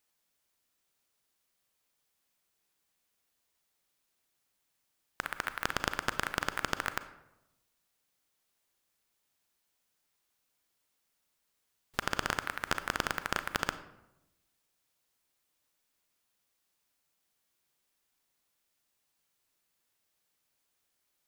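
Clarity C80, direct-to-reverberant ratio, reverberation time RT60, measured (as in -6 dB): 15.0 dB, 11.0 dB, 0.90 s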